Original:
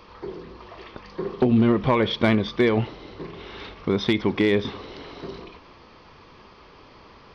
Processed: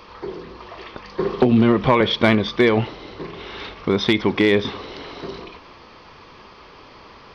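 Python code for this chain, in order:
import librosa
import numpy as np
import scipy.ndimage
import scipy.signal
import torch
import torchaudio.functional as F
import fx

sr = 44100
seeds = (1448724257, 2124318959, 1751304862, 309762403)

y = fx.low_shelf(x, sr, hz=390.0, db=-4.5)
y = fx.band_squash(y, sr, depth_pct=40, at=(1.19, 2.01))
y = F.gain(torch.from_numpy(y), 6.0).numpy()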